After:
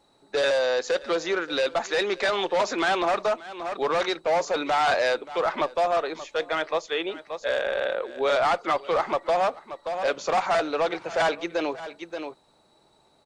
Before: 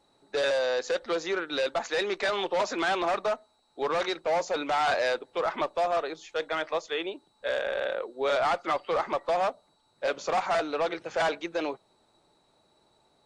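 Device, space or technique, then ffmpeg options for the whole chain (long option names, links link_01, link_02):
ducked delay: -filter_complex "[0:a]asplit=3[link_01][link_02][link_03];[link_02]adelay=579,volume=-7dB[link_04];[link_03]apad=whole_len=610065[link_05];[link_04][link_05]sidechaincompress=threshold=-41dB:ratio=8:attack=7.5:release=277[link_06];[link_01][link_06]amix=inputs=2:normalize=0,volume=3.5dB"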